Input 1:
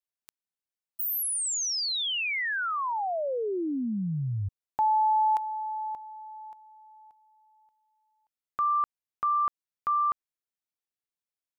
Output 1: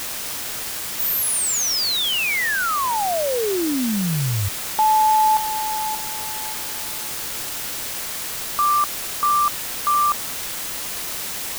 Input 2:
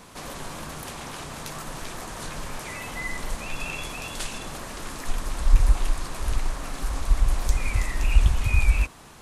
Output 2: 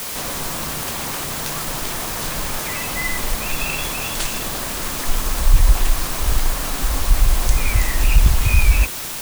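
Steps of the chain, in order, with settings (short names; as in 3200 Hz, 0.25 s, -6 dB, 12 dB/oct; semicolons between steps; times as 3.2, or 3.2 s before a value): soft clip -11 dBFS; requantised 6-bit, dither triangular; gain +7.5 dB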